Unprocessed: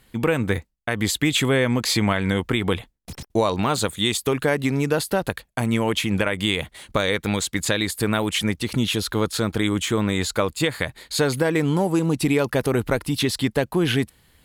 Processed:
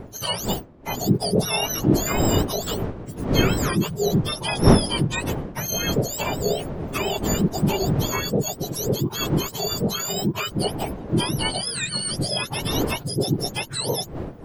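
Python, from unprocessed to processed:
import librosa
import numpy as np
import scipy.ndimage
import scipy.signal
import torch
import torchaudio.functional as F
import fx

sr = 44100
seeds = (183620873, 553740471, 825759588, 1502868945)

y = fx.octave_mirror(x, sr, pivot_hz=1200.0)
y = fx.dmg_wind(y, sr, seeds[0], corner_hz=350.0, level_db=-26.0)
y = F.gain(torch.from_numpy(y), -1.5).numpy()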